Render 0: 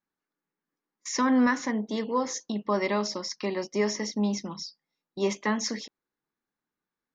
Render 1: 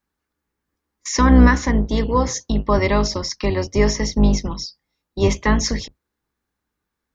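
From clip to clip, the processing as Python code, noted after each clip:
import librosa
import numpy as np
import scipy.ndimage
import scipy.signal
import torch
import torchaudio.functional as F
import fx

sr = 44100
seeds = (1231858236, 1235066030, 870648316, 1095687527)

y = fx.octave_divider(x, sr, octaves=2, level_db=3.0)
y = y * librosa.db_to_amplitude(8.0)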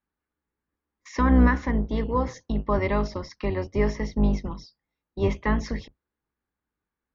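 y = scipy.signal.sosfilt(scipy.signal.butter(2, 2700.0, 'lowpass', fs=sr, output='sos'), x)
y = y * librosa.db_to_amplitude(-6.5)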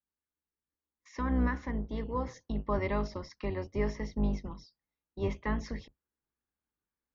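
y = fx.rider(x, sr, range_db=4, speed_s=2.0)
y = y * librosa.db_to_amplitude(-9.0)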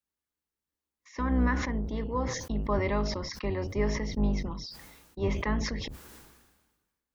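y = fx.sustainer(x, sr, db_per_s=44.0)
y = y * librosa.db_to_amplitude(2.5)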